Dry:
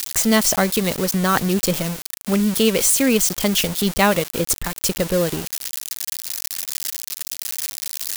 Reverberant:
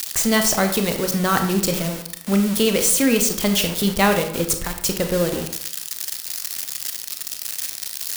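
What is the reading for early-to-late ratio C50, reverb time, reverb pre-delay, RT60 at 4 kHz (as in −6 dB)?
8.0 dB, 0.65 s, 26 ms, 0.40 s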